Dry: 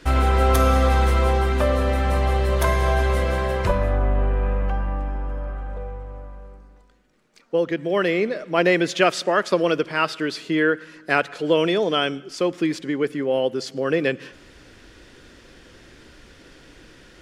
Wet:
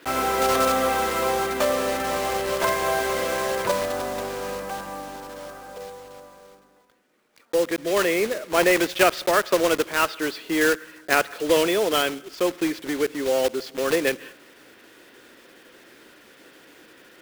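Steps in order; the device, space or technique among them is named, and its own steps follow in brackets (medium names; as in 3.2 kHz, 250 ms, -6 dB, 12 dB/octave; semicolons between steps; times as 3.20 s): early digital voice recorder (band-pass 290–3800 Hz; block-companded coder 3-bit)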